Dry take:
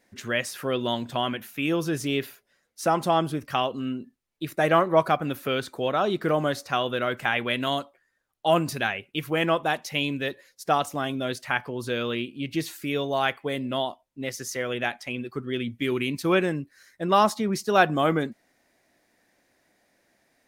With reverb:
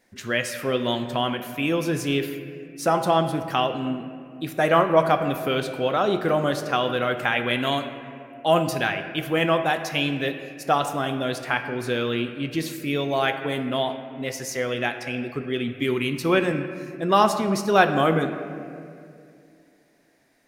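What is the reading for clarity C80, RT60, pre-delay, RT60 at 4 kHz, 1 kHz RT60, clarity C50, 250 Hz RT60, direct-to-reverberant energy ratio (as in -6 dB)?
9.5 dB, 2.4 s, 6 ms, 1.6 s, 2.0 s, 8.5 dB, 2.9 s, 6.5 dB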